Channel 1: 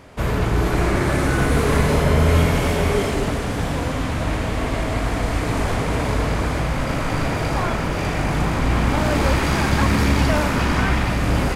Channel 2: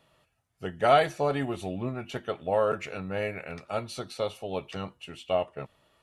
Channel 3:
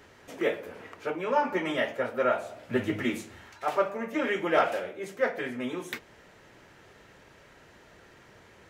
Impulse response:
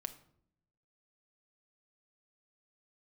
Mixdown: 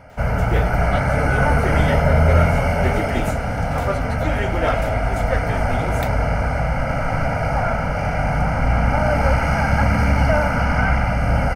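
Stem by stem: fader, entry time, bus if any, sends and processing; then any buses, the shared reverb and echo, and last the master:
+1.5 dB, 0.00 s, no send, boxcar filter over 12 samples; bass shelf 460 Hz -5 dB; comb 1.4 ms, depth 97%
-5.0 dB, 0.00 s, no send, tremolo 7.3 Hz, depth 98%
+1.0 dB, 0.10 s, no send, none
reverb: none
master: treble shelf 6.1 kHz +9.5 dB

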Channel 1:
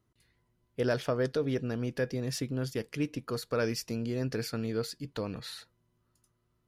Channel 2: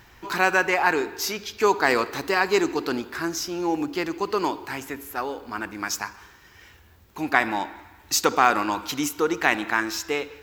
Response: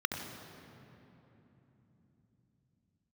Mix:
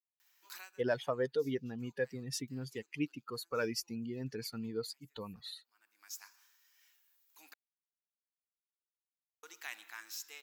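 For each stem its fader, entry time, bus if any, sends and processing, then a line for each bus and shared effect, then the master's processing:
+1.0 dB, 0.00 s, no send, expander on every frequency bin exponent 2
-11.5 dB, 0.20 s, muted 7.54–9.43 s, no send, differentiator; auto duck -22 dB, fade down 0.20 s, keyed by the first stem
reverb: none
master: high-pass 280 Hz 6 dB/octave

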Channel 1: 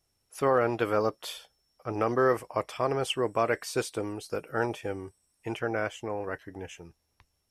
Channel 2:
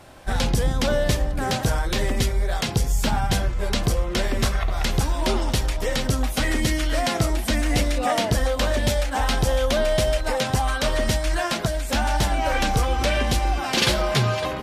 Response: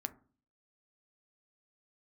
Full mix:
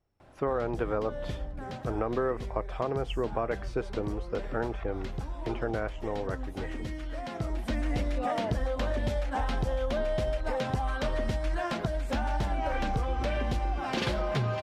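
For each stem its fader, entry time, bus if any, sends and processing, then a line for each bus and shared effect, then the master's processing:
+1.5 dB, 0.00 s, no send, low-pass 3.1 kHz 6 dB/octave
-3.5 dB, 0.20 s, no send, auto duck -10 dB, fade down 0.60 s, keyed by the first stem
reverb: none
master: low-pass 1.4 kHz 6 dB/octave; compression 4:1, threshold -26 dBFS, peak gain reduction 7 dB

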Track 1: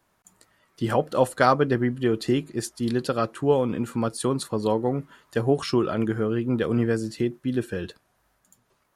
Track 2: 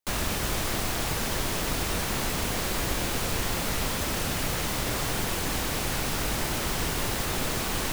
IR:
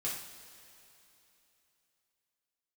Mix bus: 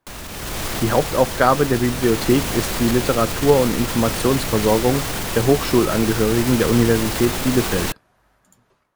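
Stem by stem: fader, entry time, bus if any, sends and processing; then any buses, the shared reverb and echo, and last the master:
-3.5 dB, 0.00 s, no send, treble shelf 5.2 kHz -10 dB
-1.0 dB, 0.00 s, no send, peak limiter -24 dBFS, peak gain reduction 9.5 dB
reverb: none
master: level rider gain up to 12 dB

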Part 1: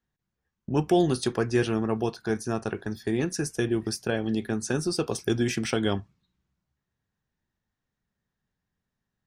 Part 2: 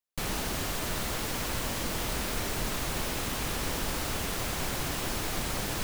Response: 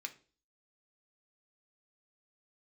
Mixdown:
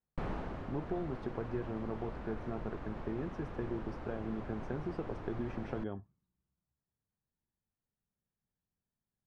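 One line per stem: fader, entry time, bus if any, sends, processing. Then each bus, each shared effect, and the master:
-9.0 dB, 0.00 s, no send, compression, threshold -25 dBFS, peak gain reduction 8.5 dB
+1.5 dB, 0.00 s, no send, auto duck -11 dB, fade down 0.70 s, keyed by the first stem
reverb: none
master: low-pass 1.2 kHz 12 dB/octave

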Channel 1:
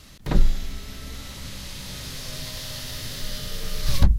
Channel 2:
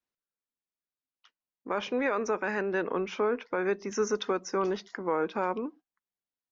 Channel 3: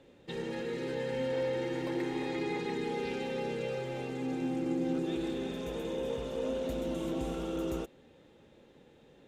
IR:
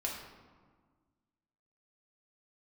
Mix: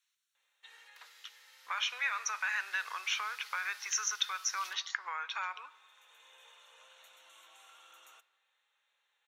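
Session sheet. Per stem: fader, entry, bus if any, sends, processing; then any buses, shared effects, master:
-18.0 dB, 0.70 s, no bus, no send, none
+1.5 dB, 0.00 s, bus A, send -23 dB, peaking EQ 4.5 kHz +14.5 dB 2.7 oct
-9.5 dB, 0.35 s, bus A, send -16 dB, auto duck -12 dB, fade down 0.45 s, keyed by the second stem
bus A: 0.0 dB, Butterworth band-stop 4.9 kHz, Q 5.7; compression 5:1, threshold -30 dBFS, peak gain reduction 13 dB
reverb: on, RT60 1.6 s, pre-delay 3 ms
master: high-pass 1.1 kHz 24 dB/octave

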